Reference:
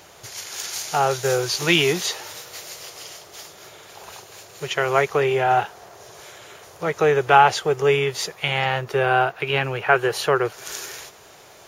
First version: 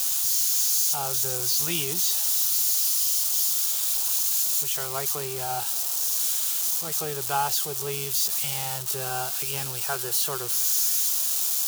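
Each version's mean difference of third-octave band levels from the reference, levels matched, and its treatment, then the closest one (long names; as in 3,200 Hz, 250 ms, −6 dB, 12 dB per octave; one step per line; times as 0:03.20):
11.0 dB: spike at every zero crossing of −9 dBFS
octave-band graphic EQ 250/500/2,000 Hz −3/−8/−12 dB
level −8 dB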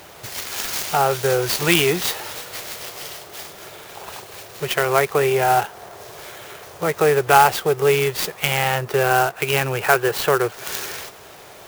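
4.5 dB: in parallel at +0.5 dB: downward compressor, threshold −26 dBFS, peak gain reduction 16.5 dB
on the sum: converter with an unsteady clock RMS 0.034 ms
level −1 dB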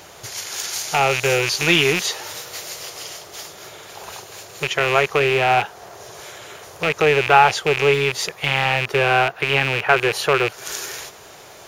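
3.0 dB: loose part that buzzes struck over −35 dBFS, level −11 dBFS
in parallel at −2.5 dB: downward compressor, threshold −31 dBFS, peak gain reduction 20.5 dB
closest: third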